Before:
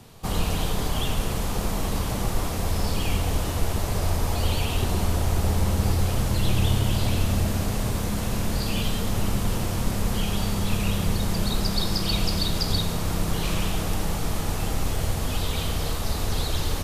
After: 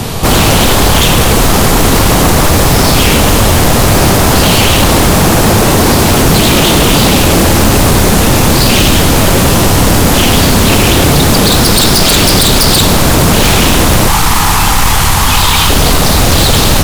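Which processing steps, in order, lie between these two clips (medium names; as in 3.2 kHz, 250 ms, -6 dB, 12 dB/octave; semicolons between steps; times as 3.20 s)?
14.08–15.69 s: resonant low shelf 740 Hz -7 dB, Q 3; wavefolder -25.5 dBFS; loudness maximiser +33 dB; trim -1 dB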